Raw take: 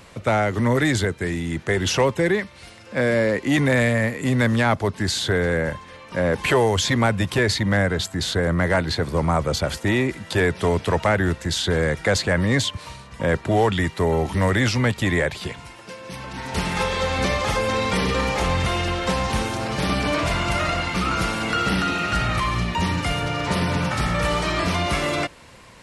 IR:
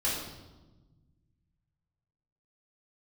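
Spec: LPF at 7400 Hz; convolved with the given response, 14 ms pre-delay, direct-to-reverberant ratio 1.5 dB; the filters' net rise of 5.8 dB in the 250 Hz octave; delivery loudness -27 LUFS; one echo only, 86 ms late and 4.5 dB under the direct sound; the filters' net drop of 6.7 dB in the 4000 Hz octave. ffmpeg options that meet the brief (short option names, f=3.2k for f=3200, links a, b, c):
-filter_complex "[0:a]lowpass=7.4k,equalizer=f=250:t=o:g=7.5,equalizer=f=4k:t=o:g=-8.5,aecho=1:1:86:0.596,asplit=2[a][b];[1:a]atrim=start_sample=2205,adelay=14[c];[b][c]afir=irnorm=-1:irlink=0,volume=-9.5dB[d];[a][d]amix=inputs=2:normalize=0,volume=-11.5dB"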